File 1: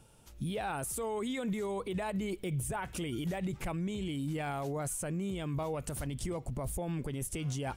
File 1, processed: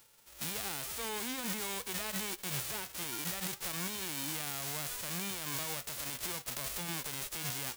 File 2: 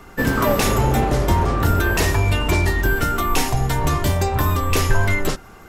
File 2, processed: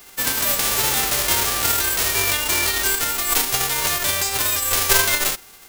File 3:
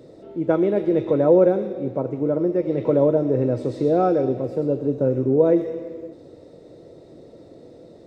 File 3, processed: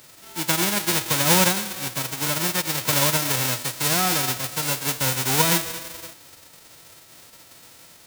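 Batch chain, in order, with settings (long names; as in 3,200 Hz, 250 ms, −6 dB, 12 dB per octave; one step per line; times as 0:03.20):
spectral envelope flattened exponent 0.1
level −3 dB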